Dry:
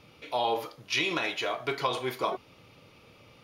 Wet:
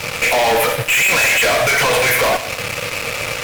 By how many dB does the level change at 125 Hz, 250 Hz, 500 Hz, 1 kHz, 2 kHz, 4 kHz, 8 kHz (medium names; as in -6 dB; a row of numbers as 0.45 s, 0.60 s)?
+17.5 dB, +8.5 dB, +15.0 dB, +13.0 dB, +20.5 dB, +14.5 dB, +26.0 dB